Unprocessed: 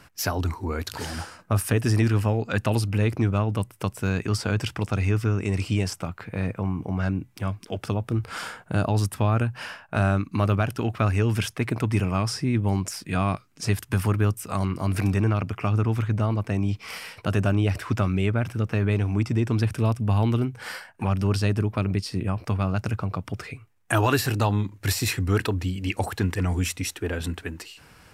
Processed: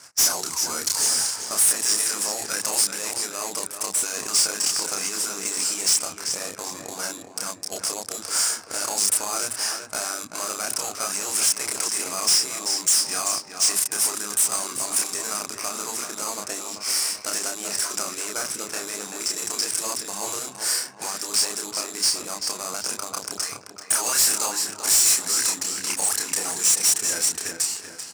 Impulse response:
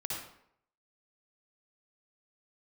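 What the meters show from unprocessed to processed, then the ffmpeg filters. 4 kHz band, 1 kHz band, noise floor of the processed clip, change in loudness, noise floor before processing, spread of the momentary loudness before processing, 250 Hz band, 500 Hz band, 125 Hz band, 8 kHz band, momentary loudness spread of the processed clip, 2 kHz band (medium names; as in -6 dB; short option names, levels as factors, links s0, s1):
+11.5 dB, -1.5 dB, -41 dBFS, +3.0 dB, -53 dBFS, 8 LU, -14.5 dB, -6.5 dB, under -25 dB, +19.5 dB, 10 LU, -0.5 dB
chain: -filter_complex "[0:a]asplit=2[s0][s1];[s1]adelay=30,volume=0.708[s2];[s0][s2]amix=inputs=2:normalize=0,asplit=2[s3][s4];[s4]acrusher=samples=12:mix=1:aa=0.000001,volume=0.398[s5];[s3][s5]amix=inputs=2:normalize=0,alimiter=limit=0.251:level=0:latency=1:release=18,lowpass=9800,afftfilt=real='re*lt(hypot(re,im),0.398)':imag='im*lt(hypot(re,im),0.398)':win_size=1024:overlap=0.75,asplit=2[s6][s7];[s7]adelay=386,lowpass=f=4300:p=1,volume=0.398,asplit=2[s8][s9];[s9]adelay=386,lowpass=f=4300:p=1,volume=0.5,asplit=2[s10][s11];[s11]adelay=386,lowpass=f=4300:p=1,volume=0.5,asplit=2[s12][s13];[s13]adelay=386,lowpass=f=4300:p=1,volume=0.5,asplit=2[s14][s15];[s15]adelay=386,lowpass=f=4300:p=1,volume=0.5,asplit=2[s16][s17];[s17]adelay=386,lowpass=f=4300:p=1,volume=0.5[s18];[s6][s8][s10][s12][s14][s16][s18]amix=inputs=7:normalize=0,aexciter=amount=10.7:drive=9.7:freq=5300,adynamicsmooth=sensitivity=6.5:basefreq=3000,highpass=f=890:p=1,asoftclip=type=tanh:threshold=0.188"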